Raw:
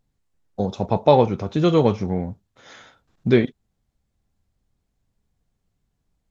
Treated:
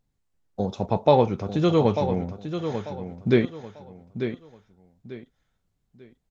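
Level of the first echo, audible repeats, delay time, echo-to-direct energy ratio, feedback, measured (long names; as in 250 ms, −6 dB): −9.0 dB, 3, 893 ms, −8.5 dB, 29%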